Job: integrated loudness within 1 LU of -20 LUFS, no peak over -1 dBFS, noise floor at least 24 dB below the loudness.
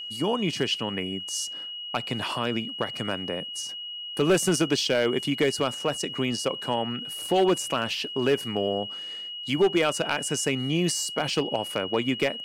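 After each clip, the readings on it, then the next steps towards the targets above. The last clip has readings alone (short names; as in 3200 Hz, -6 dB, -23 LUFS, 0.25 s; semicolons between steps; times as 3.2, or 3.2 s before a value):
clipped 0.4%; flat tops at -14.5 dBFS; steady tone 2900 Hz; tone level -34 dBFS; loudness -26.5 LUFS; peak -14.5 dBFS; loudness target -20.0 LUFS
-> clip repair -14.5 dBFS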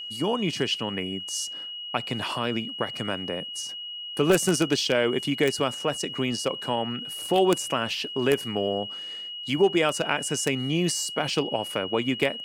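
clipped 0.0%; steady tone 2900 Hz; tone level -34 dBFS
-> notch 2900 Hz, Q 30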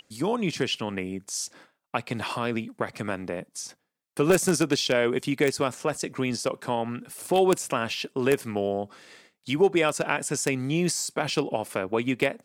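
steady tone none; loudness -27.0 LUFS; peak -5.5 dBFS; loudness target -20.0 LUFS
-> gain +7 dB; limiter -1 dBFS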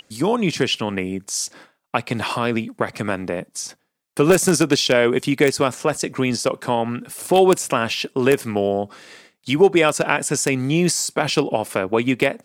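loudness -20.0 LUFS; peak -1.0 dBFS; noise floor -67 dBFS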